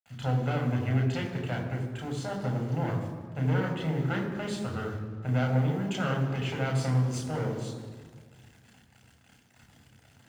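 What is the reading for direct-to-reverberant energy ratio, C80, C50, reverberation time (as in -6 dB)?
0.5 dB, 7.0 dB, 5.5 dB, 1.6 s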